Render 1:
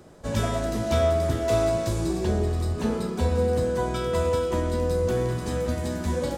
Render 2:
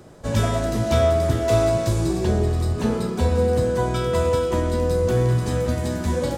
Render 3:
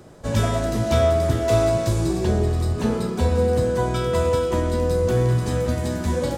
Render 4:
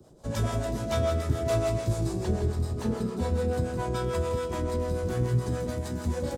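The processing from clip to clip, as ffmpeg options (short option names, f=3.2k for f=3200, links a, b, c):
-af "equalizer=f=120:t=o:w=0.24:g=7,volume=3.5dB"
-af anull
-filter_complex "[0:a]acrossover=split=210|2800[a][b][c];[b]adynamicsmooth=sensitivity=5:basefreq=770[d];[a][d][c]amix=inputs=3:normalize=0,acrossover=split=480[e][f];[e]aeval=exprs='val(0)*(1-0.7/2+0.7/2*cos(2*PI*6.9*n/s))':c=same[g];[f]aeval=exprs='val(0)*(1-0.7/2-0.7/2*cos(2*PI*6.9*n/s))':c=same[h];[g][h]amix=inputs=2:normalize=0,aecho=1:1:162:0.376,volume=-4.5dB"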